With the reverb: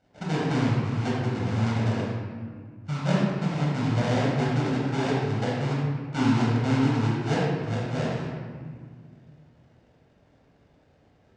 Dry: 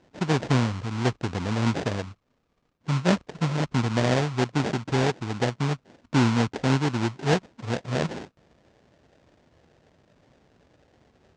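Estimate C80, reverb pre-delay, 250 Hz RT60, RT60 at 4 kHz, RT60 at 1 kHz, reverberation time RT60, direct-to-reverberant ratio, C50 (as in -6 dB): 0.5 dB, 20 ms, 2.8 s, 1.1 s, 1.7 s, 1.8 s, -5.5 dB, -1.5 dB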